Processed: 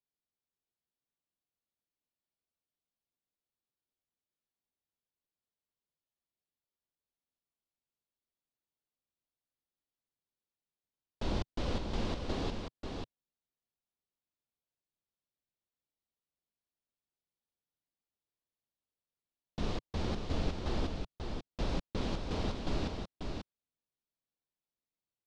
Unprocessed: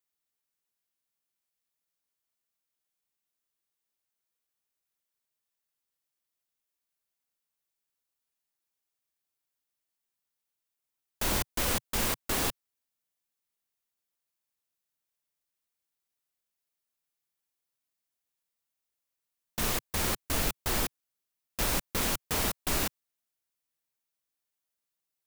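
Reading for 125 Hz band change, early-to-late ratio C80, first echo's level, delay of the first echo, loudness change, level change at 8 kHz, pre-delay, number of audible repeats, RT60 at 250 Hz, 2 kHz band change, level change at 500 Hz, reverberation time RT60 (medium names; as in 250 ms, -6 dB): +1.0 dB, no reverb, -5.5 dB, 539 ms, -8.5 dB, -22.5 dB, no reverb, 1, no reverb, -12.0 dB, -2.0 dB, no reverb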